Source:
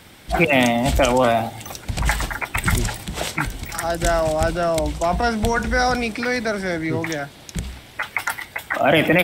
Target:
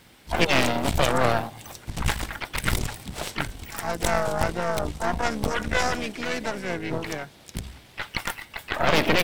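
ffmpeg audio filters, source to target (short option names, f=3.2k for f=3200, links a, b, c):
-filter_complex "[0:a]asplit=3[a][b][c];[b]asetrate=33038,aresample=44100,atempo=1.33484,volume=-15dB[d];[c]asetrate=58866,aresample=44100,atempo=0.749154,volume=-7dB[e];[a][d][e]amix=inputs=3:normalize=0,aeval=exprs='0.794*(cos(1*acos(clip(val(0)/0.794,-1,1)))-cos(1*PI/2))+0.355*(cos(4*acos(clip(val(0)/0.794,-1,1)))-cos(4*PI/2))':c=same,volume=-8.5dB"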